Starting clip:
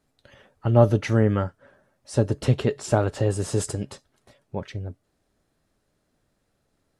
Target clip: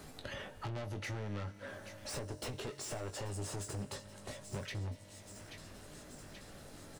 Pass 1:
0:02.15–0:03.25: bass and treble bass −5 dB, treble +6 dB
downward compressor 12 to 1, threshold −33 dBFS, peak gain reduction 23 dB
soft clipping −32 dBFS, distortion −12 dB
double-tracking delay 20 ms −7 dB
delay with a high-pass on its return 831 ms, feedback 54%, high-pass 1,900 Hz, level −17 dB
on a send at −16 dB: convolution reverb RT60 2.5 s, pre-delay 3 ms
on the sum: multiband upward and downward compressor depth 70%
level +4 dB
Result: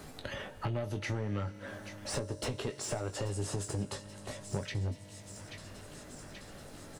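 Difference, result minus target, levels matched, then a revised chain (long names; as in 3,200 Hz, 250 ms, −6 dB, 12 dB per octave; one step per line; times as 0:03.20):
soft clipping: distortion −7 dB
0:02.15–0:03.25: bass and treble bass −5 dB, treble +6 dB
downward compressor 12 to 1, threshold −33 dBFS, peak gain reduction 23 dB
soft clipping −42.5 dBFS, distortion −5 dB
double-tracking delay 20 ms −7 dB
delay with a high-pass on its return 831 ms, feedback 54%, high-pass 1,900 Hz, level −17 dB
on a send at −16 dB: convolution reverb RT60 2.5 s, pre-delay 3 ms
on the sum: multiband upward and downward compressor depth 70%
level +4 dB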